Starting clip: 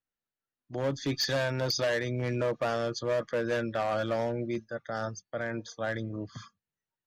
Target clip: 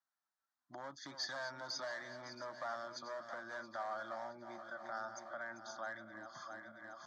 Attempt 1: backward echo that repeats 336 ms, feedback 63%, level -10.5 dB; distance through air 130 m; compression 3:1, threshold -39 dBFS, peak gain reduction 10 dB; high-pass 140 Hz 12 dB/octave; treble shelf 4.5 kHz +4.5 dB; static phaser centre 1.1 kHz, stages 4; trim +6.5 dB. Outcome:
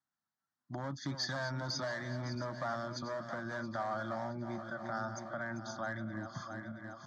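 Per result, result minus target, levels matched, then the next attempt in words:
125 Hz band +17.5 dB; compression: peak gain reduction -4 dB
backward echo that repeats 336 ms, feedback 63%, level -10.5 dB; distance through air 130 m; compression 3:1, threshold -39 dBFS, peak gain reduction 10 dB; high-pass 480 Hz 12 dB/octave; treble shelf 4.5 kHz +4.5 dB; static phaser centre 1.1 kHz, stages 4; trim +6.5 dB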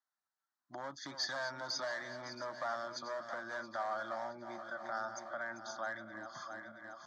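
compression: peak gain reduction -4 dB
backward echo that repeats 336 ms, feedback 63%, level -10.5 dB; distance through air 130 m; compression 3:1, threshold -45 dBFS, peak gain reduction 14 dB; high-pass 480 Hz 12 dB/octave; treble shelf 4.5 kHz +4.5 dB; static phaser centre 1.1 kHz, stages 4; trim +6.5 dB

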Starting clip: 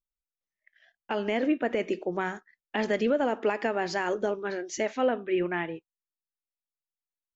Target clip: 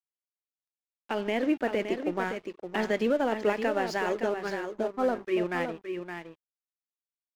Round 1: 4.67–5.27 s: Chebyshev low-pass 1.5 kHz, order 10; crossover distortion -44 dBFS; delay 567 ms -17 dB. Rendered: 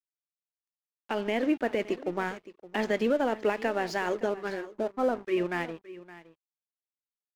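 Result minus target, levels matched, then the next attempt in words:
echo-to-direct -9.5 dB
4.67–5.27 s: Chebyshev low-pass 1.5 kHz, order 10; crossover distortion -44 dBFS; delay 567 ms -7.5 dB

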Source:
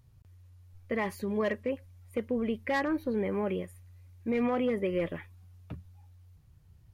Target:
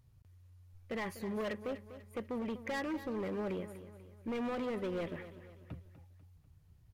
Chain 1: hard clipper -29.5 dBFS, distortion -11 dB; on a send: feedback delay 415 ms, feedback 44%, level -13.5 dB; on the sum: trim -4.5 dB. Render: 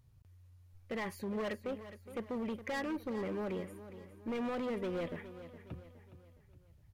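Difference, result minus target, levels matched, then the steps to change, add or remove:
echo 169 ms late
change: feedback delay 246 ms, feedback 44%, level -13.5 dB

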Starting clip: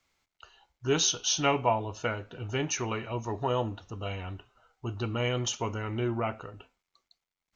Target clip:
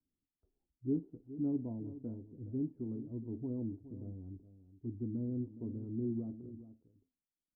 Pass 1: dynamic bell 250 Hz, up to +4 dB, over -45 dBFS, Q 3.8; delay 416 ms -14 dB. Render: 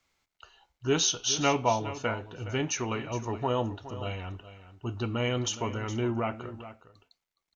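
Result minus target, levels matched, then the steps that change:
250 Hz band -7.0 dB
add after dynamic bell: four-pole ladder low-pass 320 Hz, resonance 55%

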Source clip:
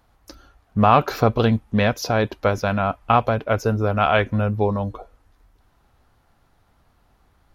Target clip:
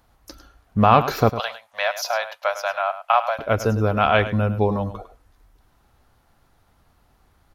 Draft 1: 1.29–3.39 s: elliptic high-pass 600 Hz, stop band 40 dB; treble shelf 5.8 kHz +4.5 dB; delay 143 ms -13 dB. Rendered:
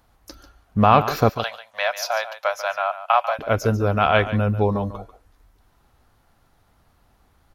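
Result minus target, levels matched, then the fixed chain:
echo 40 ms late
1.29–3.39 s: elliptic high-pass 600 Hz, stop band 40 dB; treble shelf 5.8 kHz +4.5 dB; delay 103 ms -13 dB

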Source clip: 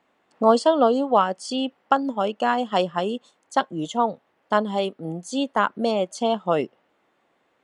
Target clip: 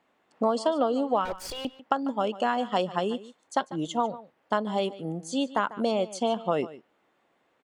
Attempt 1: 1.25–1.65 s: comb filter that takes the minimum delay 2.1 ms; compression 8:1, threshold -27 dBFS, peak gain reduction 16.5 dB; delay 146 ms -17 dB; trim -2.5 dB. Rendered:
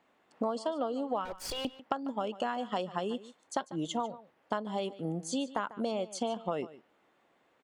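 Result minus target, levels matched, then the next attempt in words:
compression: peak gain reduction +8.5 dB
1.25–1.65 s: comb filter that takes the minimum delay 2.1 ms; compression 8:1, threshold -17.5 dBFS, peak gain reduction 8.5 dB; delay 146 ms -17 dB; trim -2.5 dB

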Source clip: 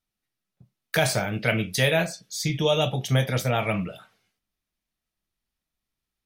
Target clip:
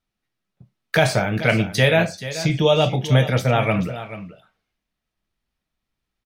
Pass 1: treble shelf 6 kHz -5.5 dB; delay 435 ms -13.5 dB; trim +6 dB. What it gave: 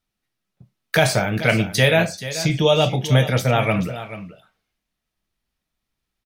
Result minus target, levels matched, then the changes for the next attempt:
8 kHz band +4.0 dB
change: treble shelf 6 kHz -13 dB

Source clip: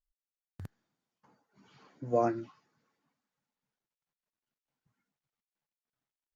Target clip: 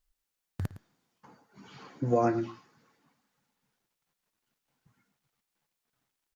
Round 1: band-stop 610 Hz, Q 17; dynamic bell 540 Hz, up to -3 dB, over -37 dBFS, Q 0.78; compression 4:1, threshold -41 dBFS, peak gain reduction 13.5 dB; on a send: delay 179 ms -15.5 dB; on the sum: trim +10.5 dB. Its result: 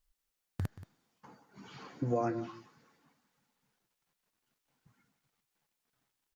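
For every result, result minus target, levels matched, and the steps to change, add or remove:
echo 68 ms late; compression: peak gain reduction +6.5 dB
change: delay 111 ms -15.5 dB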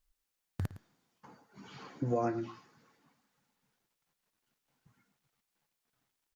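compression: peak gain reduction +6.5 dB
change: compression 4:1, threshold -32.5 dBFS, peak gain reduction 7 dB

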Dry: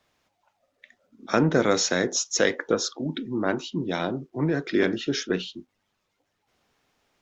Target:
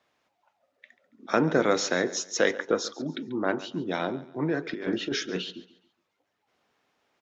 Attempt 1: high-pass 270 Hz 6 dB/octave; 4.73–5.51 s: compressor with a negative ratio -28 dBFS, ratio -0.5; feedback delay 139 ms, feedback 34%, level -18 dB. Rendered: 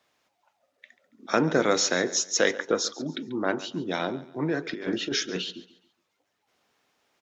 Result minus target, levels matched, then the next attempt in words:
8 kHz band +5.0 dB
high-pass 270 Hz 6 dB/octave; treble shelf 4.7 kHz -9.5 dB; 4.73–5.51 s: compressor with a negative ratio -28 dBFS, ratio -0.5; feedback delay 139 ms, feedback 34%, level -18 dB

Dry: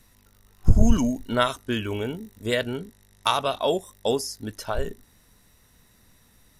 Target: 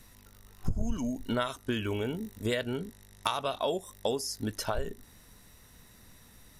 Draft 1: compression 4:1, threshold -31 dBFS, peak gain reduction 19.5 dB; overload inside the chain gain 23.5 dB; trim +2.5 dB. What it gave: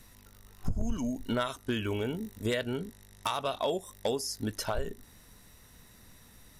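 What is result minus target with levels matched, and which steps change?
overload inside the chain: distortion +20 dB
change: overload inside the chain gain 15 dB

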